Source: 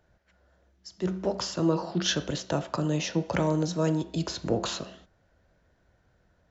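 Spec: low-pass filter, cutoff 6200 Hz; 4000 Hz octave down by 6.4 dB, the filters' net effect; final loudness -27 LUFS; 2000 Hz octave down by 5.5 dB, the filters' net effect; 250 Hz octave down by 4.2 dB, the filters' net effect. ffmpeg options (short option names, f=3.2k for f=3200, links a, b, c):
-af "lowpass=6.2k,equalizer=f=250:t=o:g=-7,equalizer=f=2k:t=o:g=-6,equalizer=f=4k:t=o:g=-5.5,volume=5.5dB"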